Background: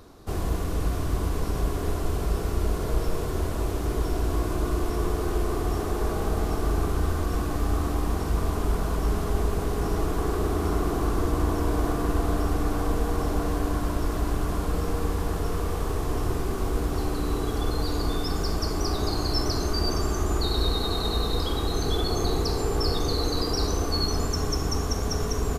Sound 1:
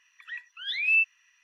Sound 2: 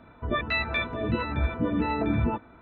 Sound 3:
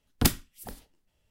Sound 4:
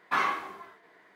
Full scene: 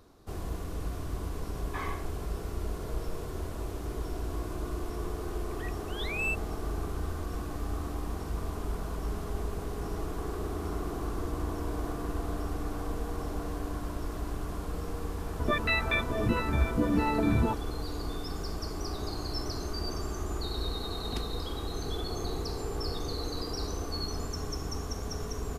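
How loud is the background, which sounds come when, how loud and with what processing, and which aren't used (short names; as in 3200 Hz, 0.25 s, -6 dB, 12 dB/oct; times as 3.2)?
background -9 dB
1.62 add 4 -10.5 dB + notch comb 1400 Hz
5.31 add 1 -11.5 dB + sample leveller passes 1
15.17 add 2 -1 dB
20.91 add 3 -15 dB + air absorption 78 m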